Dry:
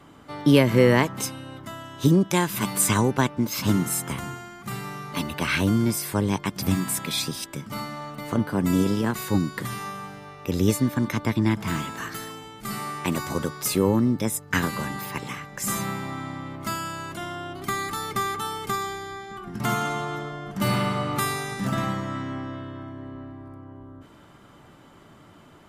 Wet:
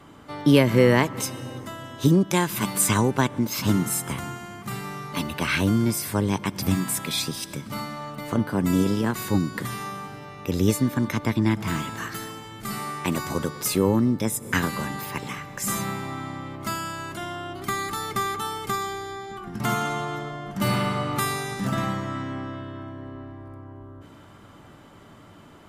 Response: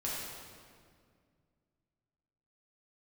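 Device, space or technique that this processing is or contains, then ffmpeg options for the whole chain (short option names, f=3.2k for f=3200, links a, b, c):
ducked reverb: -filter_complex "[0:a]asplit=3[a][b][c];[1:a]atrim=start_sample=2205[d];[b][d]afir=irnorm=-1:irlink=0[e];[c]apad=whole_len=1132618[f];[e][f]sidechaincompress=threshold=-42dB:ratio=8:attack=48:release=109,volume=-11.5dB[g];[a][g]amix=inputs=2:normalize=0"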